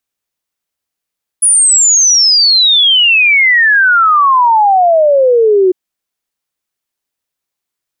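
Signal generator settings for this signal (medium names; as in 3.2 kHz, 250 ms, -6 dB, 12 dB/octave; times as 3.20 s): log sweep 10 kHz -> 360 Hz 4.30 s -5 dBFS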